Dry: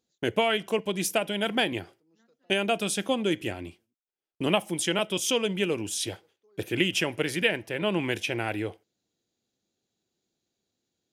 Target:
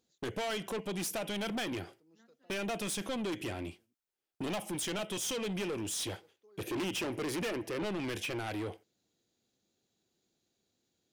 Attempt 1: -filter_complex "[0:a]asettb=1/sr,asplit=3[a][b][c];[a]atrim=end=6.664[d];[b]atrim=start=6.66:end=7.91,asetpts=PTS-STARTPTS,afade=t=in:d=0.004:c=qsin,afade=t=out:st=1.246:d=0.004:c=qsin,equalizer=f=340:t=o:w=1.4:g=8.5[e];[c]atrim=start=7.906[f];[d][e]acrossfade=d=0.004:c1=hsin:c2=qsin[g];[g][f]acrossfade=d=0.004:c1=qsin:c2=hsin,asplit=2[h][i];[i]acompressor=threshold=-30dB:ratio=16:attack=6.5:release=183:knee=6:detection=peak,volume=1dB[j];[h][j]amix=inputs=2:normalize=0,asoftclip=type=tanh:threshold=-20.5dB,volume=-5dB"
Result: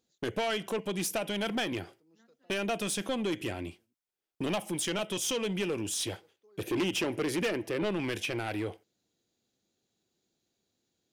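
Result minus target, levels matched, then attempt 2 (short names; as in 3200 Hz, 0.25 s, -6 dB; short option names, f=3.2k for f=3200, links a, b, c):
soft clip: distortion -4 dB
-filter_complex "[0:a]asettb=1/sr,asplit=3[a][b][c];[a]atrim=end=6.664[d];[b]atrim=start=6.66:end=7.91,asetpts=PTS-STARTPTS,afade=t=in:d=0.004:c=qsin,afade=t=out:st=1.246:d=0.004:c=qsin,equalizer=f=340:t=o:w=1.4:g=8.5[e];[c]atrim=start=7.906[f];[d][e]acrossfade=d=0.004:c1=hsin:c2=qsin[g];[g][f]acrossfade=d=0.004:c1=qsin:c2=hsin,asplit=2[h][i];[i]acompressor=threshold=-30dB:ratio=16:attack=6.5:release=183:knee=6:detection=peak,volume=1dB[j];[h][j]amix=inputs=2:normalize=0,asoftclip=type=tanh:threshold=-27.5dB,volume=-5dB"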